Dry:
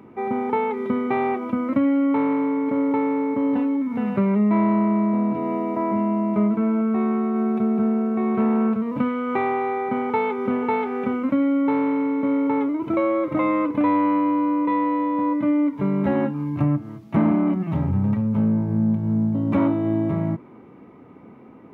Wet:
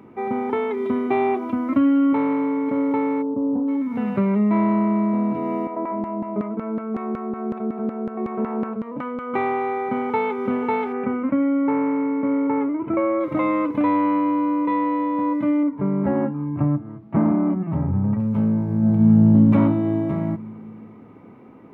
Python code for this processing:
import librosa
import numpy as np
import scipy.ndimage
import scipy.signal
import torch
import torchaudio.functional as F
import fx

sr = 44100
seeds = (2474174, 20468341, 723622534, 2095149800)

y = fx.comb(x, sr, ms=2.9, depth=0.65, at=(0.5, 2.13))
y = fx.gaussian_blur(y, sr, sigma=10.0, at=(3.21, 3.67), fade=0.02)
y = fx.filter_lfo_bandpass(y, sr, shape='saw_down', hz=5.4, low_hz=320.0, high_hz=1600.0, q=0.87, at=(5.67, 9.34))
y = fx.lowpass(y, sr, hz=2400.0, slope=24, at=(10.92, 13.19), fade=0.02)
y = fx.lowpass(y, sr, hz=1500.0, slope=12, at=(15.63, 18.2))
y = fx.reverb_throw(y, sr, start_s=18.78, length_s=0.55, rt60_s=2.7, drr_db=-4.0)